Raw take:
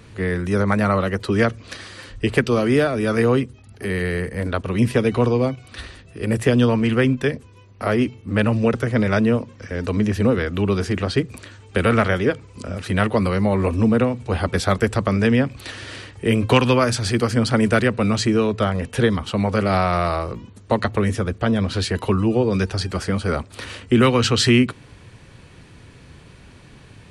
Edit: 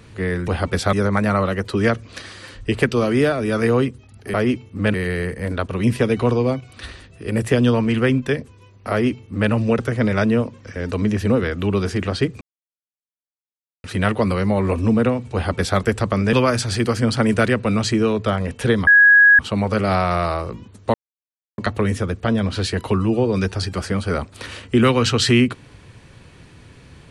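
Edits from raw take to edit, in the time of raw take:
7.86–8.46 s: copy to 3.89 s
11.36–12.79 s: mute
14.29–14.74 s: copy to 0.48 s
15.28–16.67 s: delete
19.21 s: add tone 1.66 kHz -7 dBFS 0.52 s
20.76 s: insert silence 0.64 s

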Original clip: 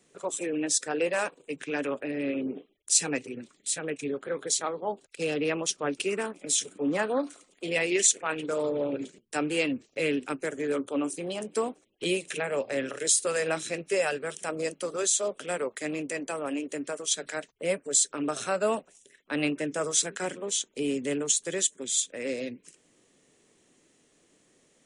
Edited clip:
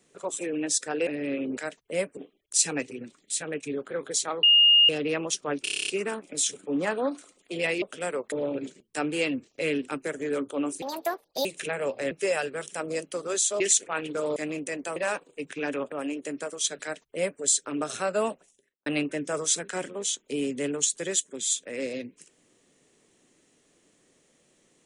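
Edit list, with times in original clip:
1.07–2.03 s: move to 16.39 s
4.79–5.25 s: bleep 2.84 kHz -14 dBFS
6.00 s: stutter 0.03 s, 9 plays
7.94–8.70 s: swap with 15.29–15.79 s
11.20–12.16 s: speed 152%
12.82–13.80 s: delete
17.28–17.88 s: copy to 2.53 s
18.78–19.33 s: studio fade out

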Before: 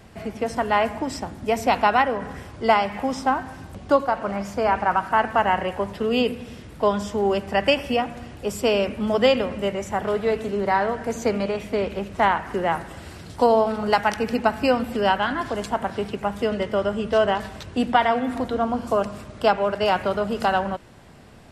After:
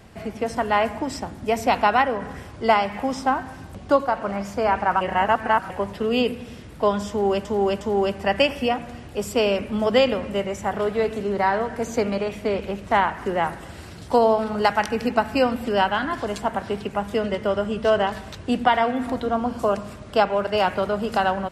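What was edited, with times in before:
5.01–5.70 s: reverse
7.09–7.45 s: loop, 3 plays

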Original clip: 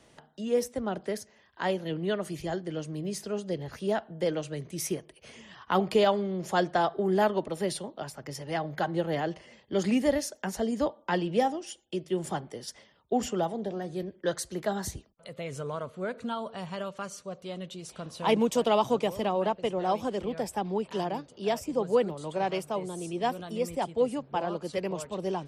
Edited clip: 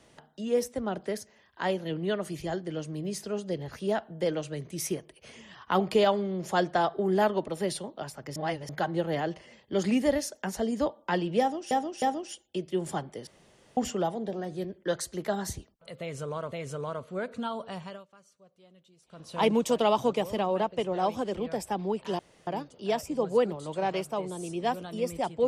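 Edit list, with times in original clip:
8.36–8.69 s: reverse
11.40–11.71 s: loop, 3 plays
12.65–13.15 s: room tone
15.38–15.90 s: loop, 2 plays
16.59–18.25 s: dip -20 dB, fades 0.33 s
21.05 s: insert room tone 0.28 s

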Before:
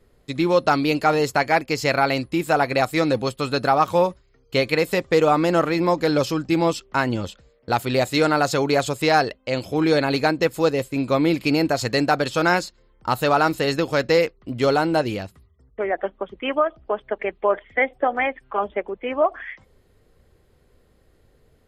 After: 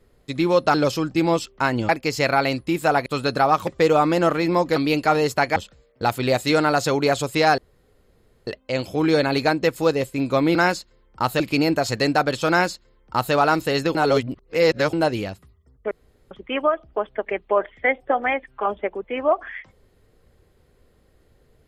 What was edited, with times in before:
0.74–1.54 s: swap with 6.08–7.23 s
2.71–3.34 s: delete
3.95–4.99 s: delete
9.25 s: insert room tone 0.89 s
12.42–13.27 s: copy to 11.33 s
13.88–14.86 s: reverse
15.84–16.24 s: room tone

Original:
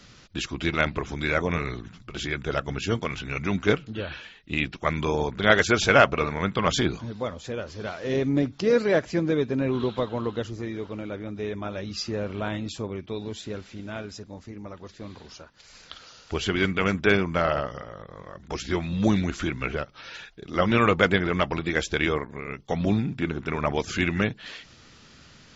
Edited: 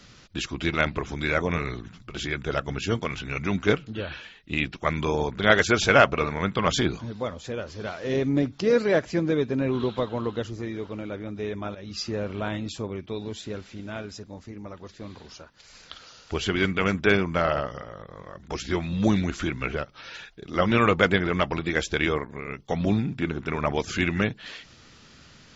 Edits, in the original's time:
11.75–12.08 s: fade in equal-power, from -13.5 dB

